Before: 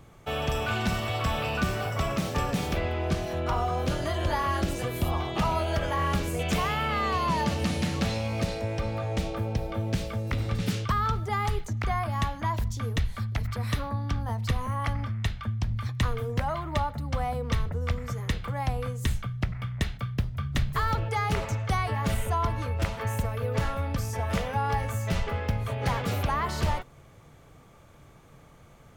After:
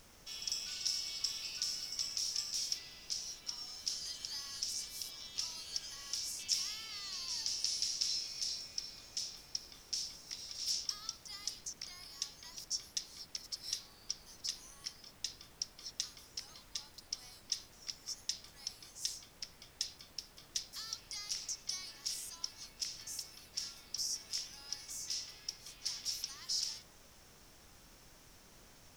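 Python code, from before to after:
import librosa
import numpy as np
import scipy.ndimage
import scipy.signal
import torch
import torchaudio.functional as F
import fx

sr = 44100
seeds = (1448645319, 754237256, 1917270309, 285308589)

y = fx.bandpass_q(x, sr, hz=5400.0, q=8.0)
y = np.diff(y, prepend=0.0)
y = fx.dmg_noise_colour(y, sr, seeds[0], colour='pink', level_db=-76.0)
y = y * 10.0 ** (15.5 / 20.0)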